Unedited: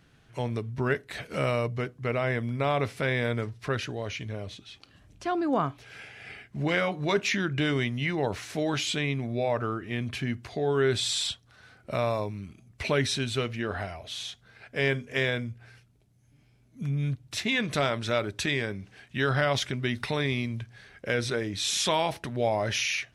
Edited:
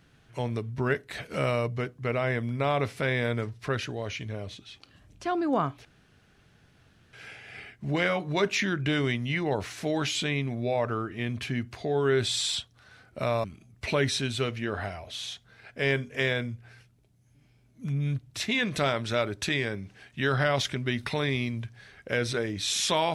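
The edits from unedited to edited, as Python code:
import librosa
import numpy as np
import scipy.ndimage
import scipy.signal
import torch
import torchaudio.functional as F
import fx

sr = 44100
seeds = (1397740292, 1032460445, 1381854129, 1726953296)

y = fx.edit(x, sr, fx.insert_room_tone(at_s=5.85, length_s=1.28),
    fx.cut(start_s=12.16, length_s=0.25), tone=tone)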